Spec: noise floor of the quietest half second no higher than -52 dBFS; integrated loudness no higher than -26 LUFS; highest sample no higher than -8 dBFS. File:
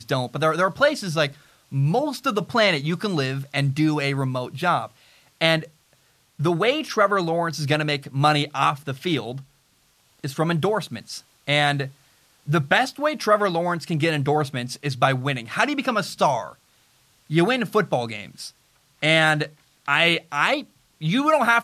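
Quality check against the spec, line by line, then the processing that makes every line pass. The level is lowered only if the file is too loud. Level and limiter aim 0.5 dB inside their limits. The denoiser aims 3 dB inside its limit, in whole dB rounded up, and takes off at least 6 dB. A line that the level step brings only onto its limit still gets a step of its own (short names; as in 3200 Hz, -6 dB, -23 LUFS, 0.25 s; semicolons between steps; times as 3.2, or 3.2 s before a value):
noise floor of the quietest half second -62 dBFS: OK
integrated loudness -22.0 LUFS: fail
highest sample -5.0 dBFS: fail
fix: gain -4.5 dB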